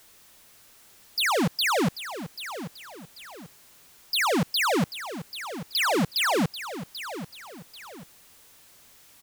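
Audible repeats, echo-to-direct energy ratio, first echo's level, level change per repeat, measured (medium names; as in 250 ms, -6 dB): 2, -11.5 dB, -12.0 dB, -8.5 dB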